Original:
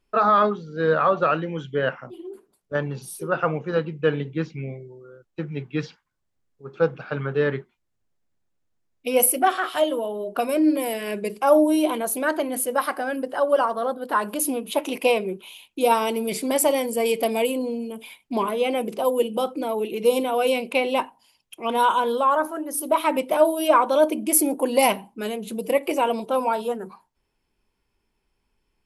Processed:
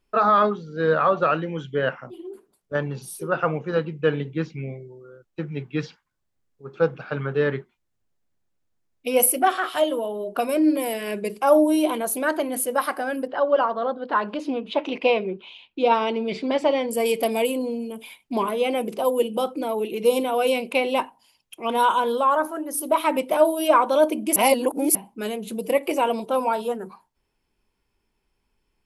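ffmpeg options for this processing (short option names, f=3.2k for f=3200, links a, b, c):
-filter_complex "[0:a]asettb=1/sr,asplit=3[a][b][c];[a]atrim=end=13.274[d];[b]atrim=start=13.27:end=16.91,asetpts=PTS-STARTPTS,afade=t=in:d=0.004:c=qsin,afade=t=out:st=3.636:d=0.004:c=qsin,lowpass=f=4.3k:w=0.5412,lowpass=f=4.3k:w=1.3066[e];[c]atrim=start=16.906[f];[d][e]acrossfade=d=0.004:c1=hsin:c2=qsin[g];[g][f]acrossfade=d=0.004:c1=qsin:c2=hsin,asplit=3[h][i][j];[h]atrim=end=24.362[k];[i]atrim=start=24.358:end=24.952,asetpts=PTS-STARTPTS,areverse[l];[j]atrim=start=24.948[m];[k][l]acrossfade=d=0.004:c1=hsin:c2=hsin[n];[n][m]acrossfade=d=0.004:c1=hsin:c2=hsin"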